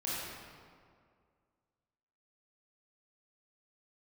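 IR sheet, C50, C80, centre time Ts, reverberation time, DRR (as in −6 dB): −4.0 dB, −1.5 dB, 139 ms, 2.1 s, −8.0 dB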